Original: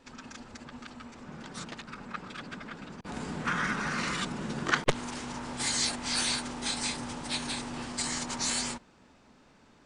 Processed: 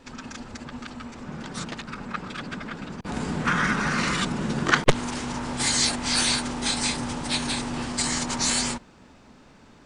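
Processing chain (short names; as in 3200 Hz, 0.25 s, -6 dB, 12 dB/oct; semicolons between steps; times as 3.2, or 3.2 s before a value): low shelf 210 Hz +4 dB; gain +6.5 dB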